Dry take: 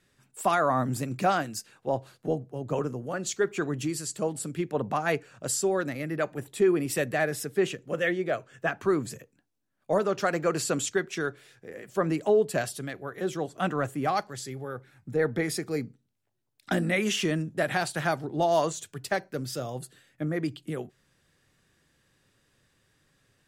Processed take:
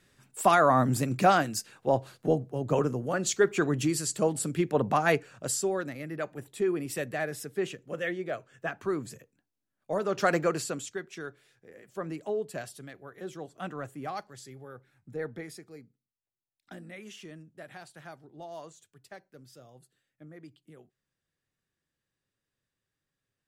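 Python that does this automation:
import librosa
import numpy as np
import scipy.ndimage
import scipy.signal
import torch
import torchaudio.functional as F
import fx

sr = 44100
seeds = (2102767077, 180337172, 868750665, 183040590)

y = fx.gain(x, sr, db=fx.line((5.05, 3.0), (5.94, -5.5), (9.96, -5.5), (10.32, 3.0), (10.84, -9.5), (15.22, -9.5), (15.83, -19.0)))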